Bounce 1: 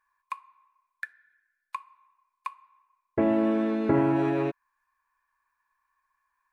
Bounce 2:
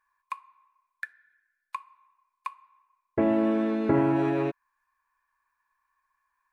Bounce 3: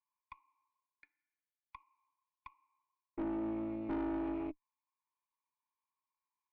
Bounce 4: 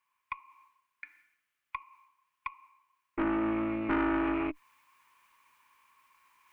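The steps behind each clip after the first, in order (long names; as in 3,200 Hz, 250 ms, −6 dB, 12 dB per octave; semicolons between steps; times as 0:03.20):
no processing that can be heard
formant filter u; tube saturation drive 33 dB, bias 0.65
flat-topped bell 1,800 Hz +11.5 dB; reversed playback; upward compression, threshold −59 dBFS; reversed playback; level +7 dB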